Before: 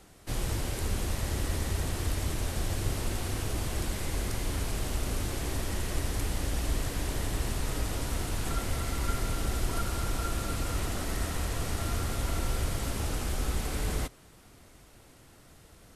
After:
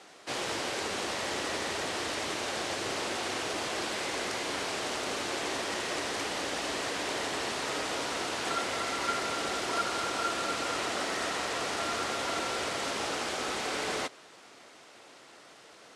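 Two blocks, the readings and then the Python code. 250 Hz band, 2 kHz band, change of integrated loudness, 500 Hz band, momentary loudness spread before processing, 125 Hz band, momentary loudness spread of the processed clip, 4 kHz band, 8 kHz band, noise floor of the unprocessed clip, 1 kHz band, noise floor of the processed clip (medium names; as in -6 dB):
-2.0 dB, +7.0 dB, +1.0 dB, +4.5 dB, 1 LU, -18.0 dB, 2 LU, +6.5 dB, +0.5 dB, -56 dBFS, +7.0 dB, -54 dBFS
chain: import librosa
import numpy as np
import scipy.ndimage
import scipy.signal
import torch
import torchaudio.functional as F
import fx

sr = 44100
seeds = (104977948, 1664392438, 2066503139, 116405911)

y = fx.cvsd(x, sr, bps=64000)
y = fx.bandpass_edges(y, sr, low_hz=430.0, high_hz=5700.0)
y = F.gain(torch.from_numpy(y), 7.0).numpy()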